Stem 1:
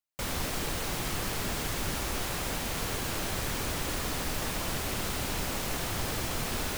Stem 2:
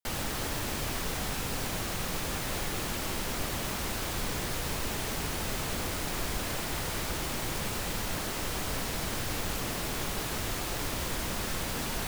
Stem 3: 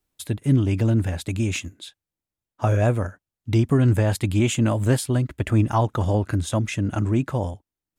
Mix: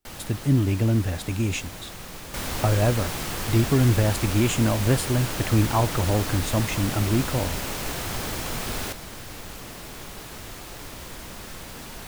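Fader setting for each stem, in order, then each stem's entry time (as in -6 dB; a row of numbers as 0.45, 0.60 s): +2.0, -5.5, -1.5 dB; 2.15, 0.00, 0.00 s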